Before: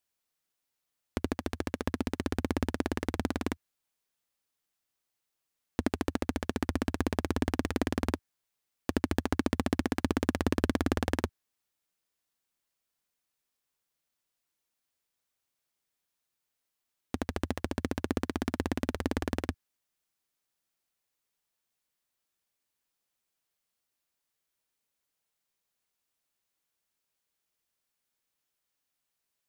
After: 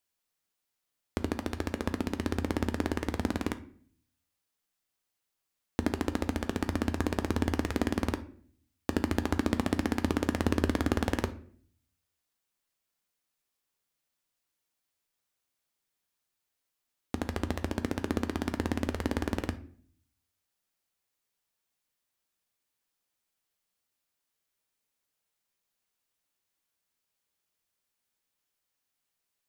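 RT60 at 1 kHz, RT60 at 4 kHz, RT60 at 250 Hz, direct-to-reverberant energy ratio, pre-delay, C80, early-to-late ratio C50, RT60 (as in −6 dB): 0.50 s, 0.35 s, 0.70 s, 9.5 dB, 10 ms, 19.5 dB, 15.0 dB, 0.55 s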